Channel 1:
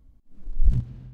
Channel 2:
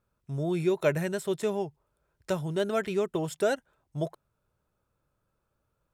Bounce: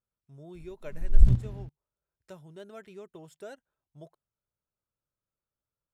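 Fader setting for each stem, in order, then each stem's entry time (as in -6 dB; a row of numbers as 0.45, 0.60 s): +2.0, -17.5 dB; 0.55, 0.00 s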